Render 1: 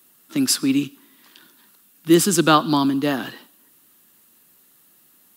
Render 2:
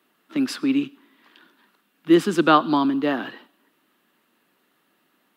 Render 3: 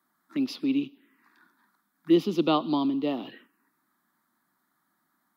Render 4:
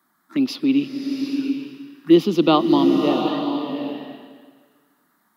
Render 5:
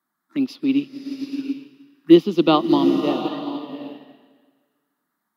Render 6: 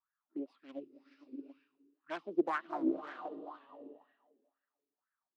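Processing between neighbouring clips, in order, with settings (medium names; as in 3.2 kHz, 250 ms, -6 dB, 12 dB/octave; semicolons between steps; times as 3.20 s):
three-band isolator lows -16 dB, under 190 Hz, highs -20 dB, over 3.4 kHz
touch-sensitive phaser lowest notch 470 Hz, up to 1.6 kHz, full sweep at -23 dBFS; trim -4.5 dB
swelling reverb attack 780 ms, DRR 4.5 dB; trim +7.5 dB
upward expansion 1.5:1, over -37 dBFS; trim +2.5 dB
self-modulated delay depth 0.67 ms; wah-wah 2 Hz 370–1700 Hz, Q 5.7; warped record 78 rpm, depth 100 cents; trim -6.5 dB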